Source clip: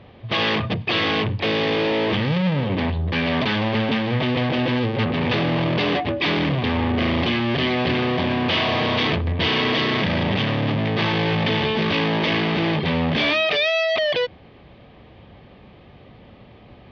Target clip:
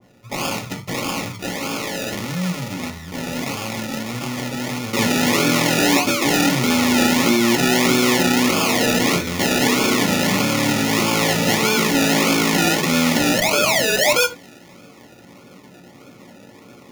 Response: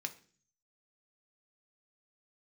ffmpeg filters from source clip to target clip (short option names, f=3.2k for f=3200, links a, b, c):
-filter_complex "[0:a]asetnsamples=n=441:p=0,asendcmd='4.93 equalizer g 9.5',equalizer=f=370:t=o:w=2.1:g=-4.5,acrusher=samples=32:mix=1:aa=0.000001:lfo=1:lforange=19.2:lforate=1.6,asuperstop=centerf=1600:order=20:qfactor=7.7[a];[1:a]atrim=start_sample=2205,atrim=end_sample=3969[b];[a][b]afir=irnorm=-1:irlink=0,adynamicequalizer=threshold=0.0178:dfrequency=1600:dqfactor=0.7:tfrequency=1600:tqfactor=0.7:attack=5:release=100:ratio=0.375:range=3:mode=boostabove:tftype=highshelf,volume=-1dB"